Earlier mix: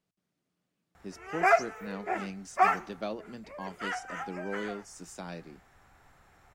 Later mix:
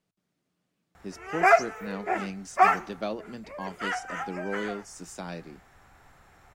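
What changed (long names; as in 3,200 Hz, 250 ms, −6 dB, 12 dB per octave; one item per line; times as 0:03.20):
speech +3.5 dB
background +4.0 dB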